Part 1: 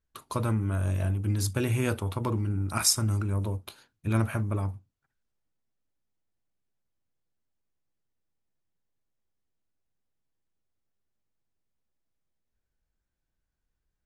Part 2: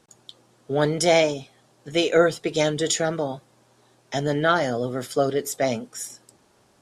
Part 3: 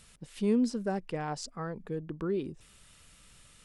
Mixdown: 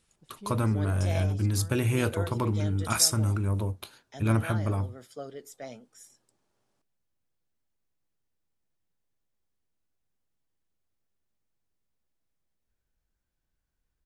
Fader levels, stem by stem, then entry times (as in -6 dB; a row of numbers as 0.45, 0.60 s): +1.0, -18.5, -14.0 dB; 0.15, 0.00, 0.00 s